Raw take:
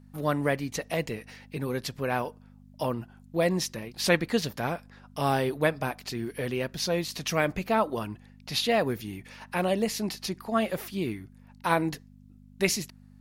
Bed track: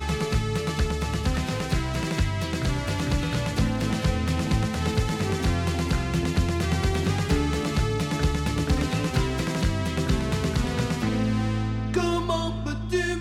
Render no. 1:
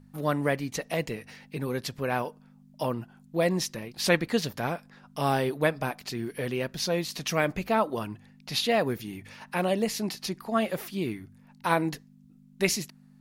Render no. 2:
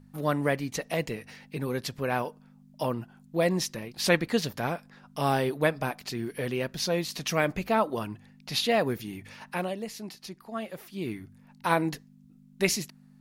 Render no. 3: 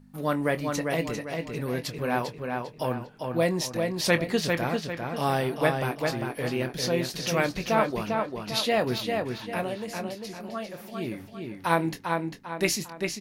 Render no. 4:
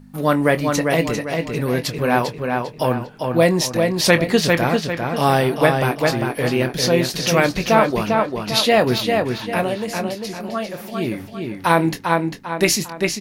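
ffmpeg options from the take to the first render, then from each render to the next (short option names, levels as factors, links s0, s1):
-af "bandreject=f=50:t=h:w=4,bandreject=f=100:t=h:w=4"
-filter_complex "[0:a]asplit=3[s0][s1][s2];[s0]atrim=end=9.75,asetpts=PTS-STARTPTS,afade=t=out:st=9.46:d=0.29:silence=0.354813[s3];[s1]atrim=start=9.75:end=10.88,asetpts=PTS-STARTPTS,volume=0.355[s4];[s2]atrim=start=10.88,asetpts=PTS-STARTPTS,afade=t=in:d=0.29:silence=0.354813[s5];[s3][s4][s5]concat=n=3:v=0:a=1"
-filter_complex "[0:a]asplit=2[s0][s1];[s1]adelay=24,volume=0.282[s2];[s0][s2]amix=inputs=2:normalize=0,asplit=2[s3][s4];[s4]adelay=398,lowpass=f=4900:p=1,volume=0.631,asplit=2[s5][s6];[s6]adelay=398,lowpass=f=4900:p=1,volume=0.41,asplit=2[s7][s8];[s8]adelay=398,lowpass=f=4900:p=1,volume=0.41,asplit=2[s9][s10];[s10]adelay=398,lowpass=f=4900:p=1,volume=0.41,asplit=2[s11][s12];[s12]adelay=398,lowpass=f=4900:p=1,volume=0.41[s13];[s3][s5][s7][s9][s11][s13]amix=inputs=6:normalize=0"
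-af "volume=2.99,alimiter=limit=0.794:level=0:latency=1"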